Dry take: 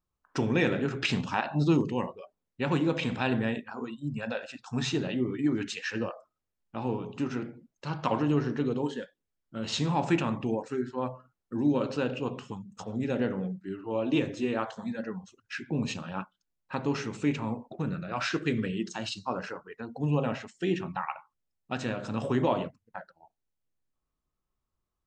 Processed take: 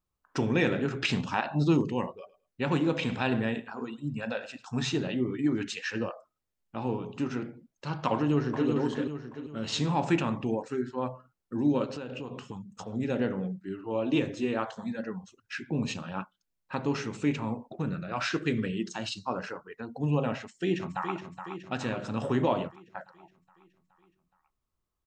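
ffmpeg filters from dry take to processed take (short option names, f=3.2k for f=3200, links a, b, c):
-filter_complex "[0:a]asettb=1/sr,asplit=3[a][b][c];[a]atrim=end=2.114[d];[b]atrim=start=2.11:end=4.65,asetpts=PTS-STARTPTS,afade=t=in:d=0.004:c=qsin,afade=t=out:st=2.536:d=0.004:c=qsin,aecho=1:1:106|212:0.126|0.0227,atrim=end_sample=112014[e];[c]atrim=start=4.646[f];[d][e]acrossfade=d=0.004:c1=hsin:c2=qsin[g];[g][f]acrossfade=d=0.004:c1=qsin:c2=hsin,asplit=2[h][i];[i]afade=t=in:st=8.14:d=0.01,afade=t=out:st=8.68:d=0.01,aecho=0:1:390|780|1170|1560|1950:0.668344|0.267338|0.106935|0.042774|0.0171096[j];[h][j]amix=inputs=2:normalize=0,asettb=1/sr,asplit=3[k][l][m];[k]atrim=end=11.844[n];[l]atrim=start=11.84:end=12.93,asetpts=PTS-STARTPTS,afade=t=in:d=0.004:c=qsin,afade=t=out:st=1.086:d=0.004:c=qsin,acompressor=threshold=-33dB:ratio=10:attack=3.2:release=140:knee=1:detection=peak[o];[m]atrim=start=12.926[p];[n][o]acrossfade=d=0.004:c1=hsin:c2=qsin[q];[q][p]acrossfade=d=0.004:c1=qsin:c2=hsin,asplit=2[r][s];[s]afade=t=in:st=20.37:d=0.01,afade=t=out:st=21.14:d=0.01,aecho=0:1:420|840|1260|1680|2100|2520|2940|3360:0.375837|0.225502|0.135301|0.0811809|0.0487085|0.0292251|0.0175351|0.010521[t];[r][t]amix=inputs=2:normalize=0"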